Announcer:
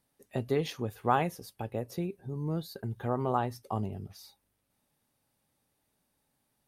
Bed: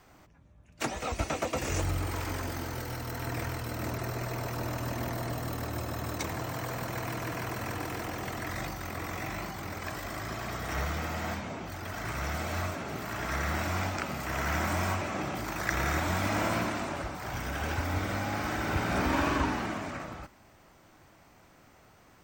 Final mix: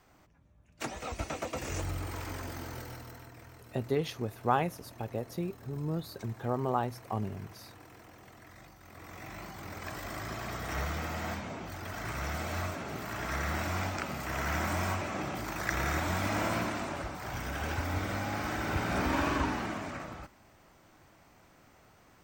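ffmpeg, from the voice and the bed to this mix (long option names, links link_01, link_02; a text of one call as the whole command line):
ffmpeg -i stem1.wav -i stem2.wav -filter_complex "[0:a]adelay=3400,volume=-1dB[link_01];[1:a]volume=10.5dB,afade=type=out:start_time=2.76:duration=0.55:silence=0.237137,afade=type=in:start_time=8.8:duration=1.32:silence=0.16788[link_02];[link_01][link_02]amix=inputs=2:normalize=0" out.wav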